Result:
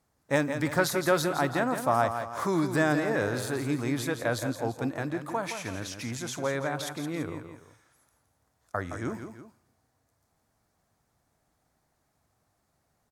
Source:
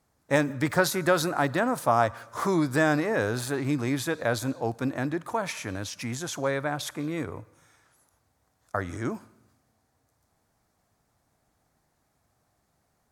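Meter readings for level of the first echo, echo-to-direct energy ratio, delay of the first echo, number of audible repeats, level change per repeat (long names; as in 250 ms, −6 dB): −8.5 dB, −7.5 dB, 168 ms, 2, −7.0 dB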